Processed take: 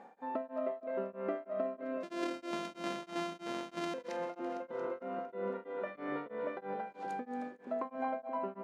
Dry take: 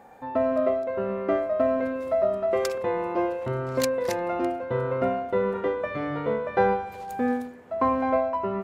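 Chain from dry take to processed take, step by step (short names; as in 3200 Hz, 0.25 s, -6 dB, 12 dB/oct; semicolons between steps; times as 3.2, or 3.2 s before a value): 2.03–3.94 sample sorter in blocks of 128 samples; 7.85–8.3 comb 1.3 ms; compressor 5:1, threshold -31 dBFS, peak gain reduction 13.5 dB; brick-wall FIR high-pass 160 Hz; air absorption 87 m; split-band echo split 610 Hz, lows 0.477 s, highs 0.228 s, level -8.5 dB; beating tremolo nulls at 3.1 Hz; gain -2.5 dB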